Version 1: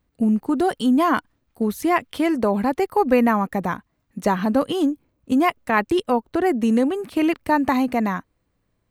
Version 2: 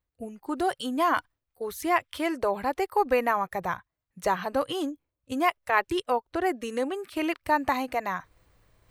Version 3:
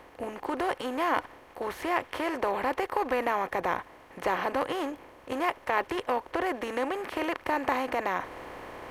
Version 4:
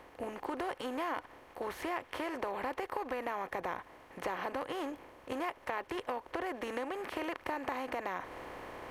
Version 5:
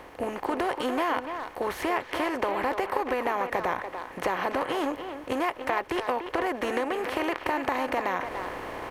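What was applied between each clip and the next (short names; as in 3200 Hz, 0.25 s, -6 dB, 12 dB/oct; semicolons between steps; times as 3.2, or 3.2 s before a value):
spectral noise reduction 12 dB; bell 230 Hz -11 dB 1.2 oct; reverse; upward compressor, threshold -38 dBFS; reverse; gain -3 dB
per-bin compression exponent 0.4; high shelf 4400 Hz -7 dB; gain -7.5 dB
compressor 4:1, threshold -30 dBFS, peak gain reduction 8 dB; gain -3.5 dB
speakerphone echo 0.29 s, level -7 dB; gain +9 dB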